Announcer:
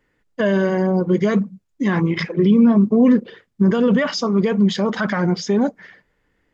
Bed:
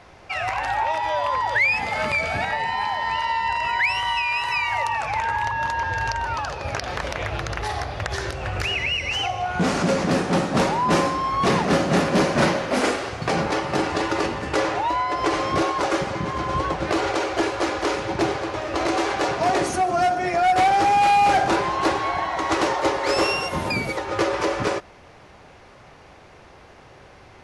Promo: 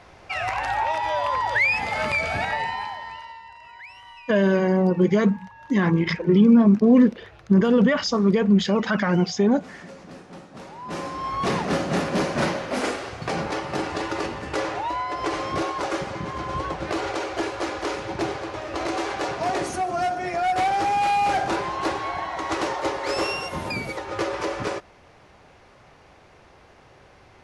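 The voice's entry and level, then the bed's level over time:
3.90 s, -1.5 dB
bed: 2.61 s -1 dB
3.51 s -21.5 dB
10.61 s -21.5 dB
11.27 s -4.5 dB

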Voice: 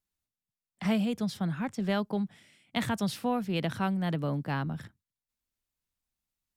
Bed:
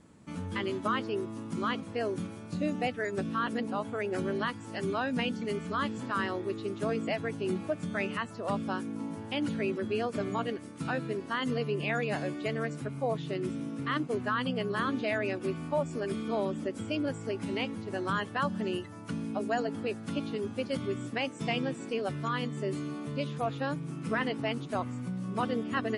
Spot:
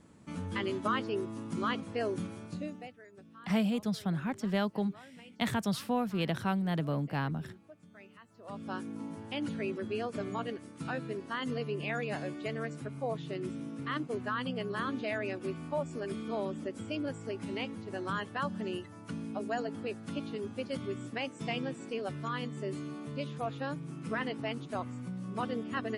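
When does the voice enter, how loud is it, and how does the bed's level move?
2.65 s, -1.5 dB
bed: 2.44 s -1 dB
3.04 s -22 dB
8.24 s -22 dB
8.75 s -4 dB

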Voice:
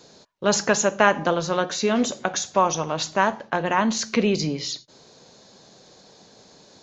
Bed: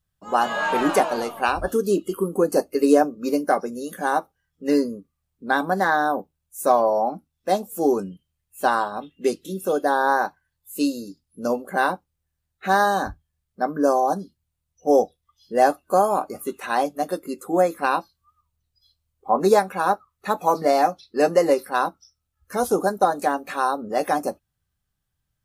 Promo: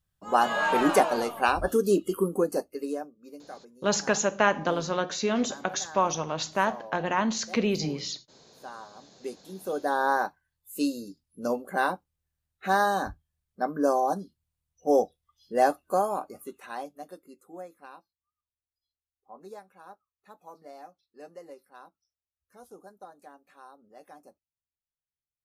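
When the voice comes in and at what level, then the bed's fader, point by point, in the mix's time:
3.40 s, -5.0 dB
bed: 2.27 s -2 dB
3.22 s -23.5 dB
8.62 s -23.5 dB
10.02 s -5 dB
15.78 s -5 dB
18.08 s -28 dB

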